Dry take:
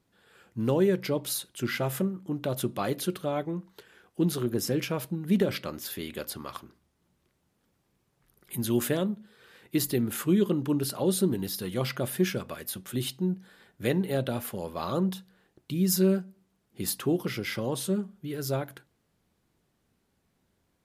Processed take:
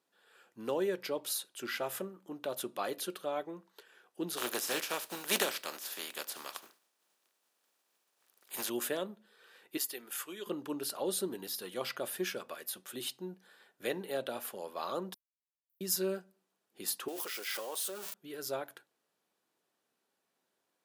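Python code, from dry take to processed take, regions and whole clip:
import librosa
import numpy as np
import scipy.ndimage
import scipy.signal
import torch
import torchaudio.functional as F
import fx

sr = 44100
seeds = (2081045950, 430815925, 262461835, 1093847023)

y = fx.spec_flatten(x, sr, power=0.47, at=(4.36, 8.68), fade=0.02)
y = fx.highpass(y, sr, hz=110.0, slope=12, at=(4.36, 8.68), fade=0.02)
y = fx.chain(y, sr, fx.highpass(hz=1200.0, slope=6),
    fx.notch(hz=4000.0, q=14.0), at=(9.77, 10.47))
y = fx.chain(y, sr, fx.block_float(bits=5),
    fx.cheby2_bandstop(low_hz=130.0, high_hz=3600.0, order=4, stop_db=80),
    fx.tilt_eq(slope=-4.5), at=(15.14, 15.81))
y = fx.chain(y, sr, fx.crossing_spikes(level_db=-33.0),
    fx.bessel_highpass(hz=640.0, order=2),
    fx.sustainer(db_per_s=27.0), at=(17.08, 18.14))
y = scipy.signal.sosfilt(scipy.signal.butter(2, 440.0, 'highpass', fs=sr, output='sos'), y)
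y = fx.notch(y, sr, hz=2100.0, q=15.0)
y = y * librosa.db_to_amplitude(-4.0)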